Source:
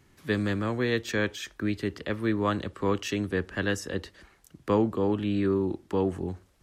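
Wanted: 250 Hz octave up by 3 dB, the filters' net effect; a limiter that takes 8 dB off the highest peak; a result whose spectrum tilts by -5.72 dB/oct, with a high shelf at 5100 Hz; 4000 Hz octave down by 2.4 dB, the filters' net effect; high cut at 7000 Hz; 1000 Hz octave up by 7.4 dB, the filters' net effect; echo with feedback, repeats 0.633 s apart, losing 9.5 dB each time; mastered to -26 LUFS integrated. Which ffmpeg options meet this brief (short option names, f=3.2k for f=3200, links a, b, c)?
-af "lowpass=7k,equalizer=f=250:t=o:g=3.5,equalizer=f=1k:t=o:g=8.5,equalizer=f=4k:t=o:g=-6.5,highshelf=f=5.1k:g=7,alimiter=limit=-15.5dB:level=0:latency=1,aecho=1:1:633|1266|1899|2532:0.335|0.111|0.0365|0.012,volume=1.5dB"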